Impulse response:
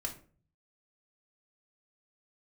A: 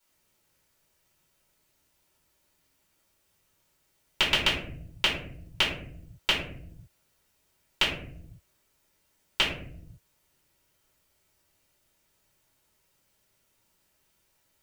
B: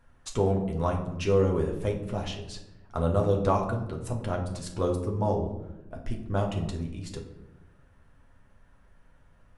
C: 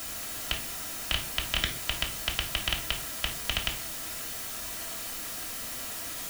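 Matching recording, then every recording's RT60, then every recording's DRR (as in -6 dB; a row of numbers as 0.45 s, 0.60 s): C; 0.65 s, 0.95 s, 0.40 s; -9.5 dB, 0.0 dB, -0.5 dB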